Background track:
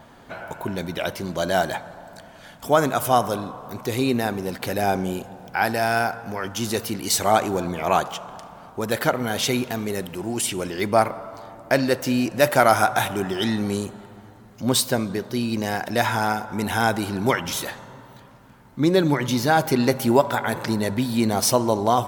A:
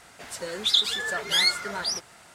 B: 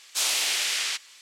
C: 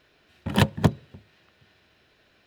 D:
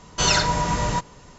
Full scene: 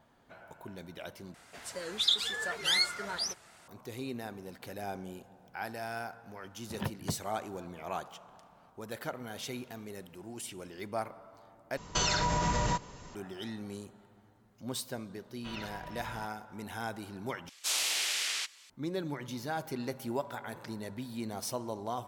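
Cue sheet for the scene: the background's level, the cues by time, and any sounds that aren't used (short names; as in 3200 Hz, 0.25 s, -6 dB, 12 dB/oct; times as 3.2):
background track -17.5 dB
1.34 replace with A -6 dB + record warp 78 rpm, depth 100 cents
6.24 add C -16 dB + treble ducked by the level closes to 2600 Hz, closed at -17.5 dBFS
11.77 replace with D -2.5 dB + compressor 10:1, threshold -22 dBFS
15.26 add D -16.5 dB + ladder low-pass 3800 Hz, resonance 35%
17.49 replace with B -6 dB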